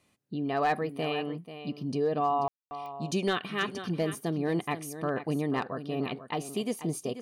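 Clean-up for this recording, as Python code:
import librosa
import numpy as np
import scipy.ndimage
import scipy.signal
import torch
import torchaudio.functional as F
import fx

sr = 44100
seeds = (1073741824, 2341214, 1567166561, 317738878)

y = fx.fix_declip(x, sr, threshold_db=-19.0)
y = fx.fix_declick_ar(y, sr, threshold=10.0)
y = fx.fix_ambience(y, sr, seeds[0], print_start_s=0.0, print_end_s=0.5, start_s=2.48, end_s=2.71)
y = fx.fix_echo_inverse(y, sr, delay_ms=487, level_db=-12.0)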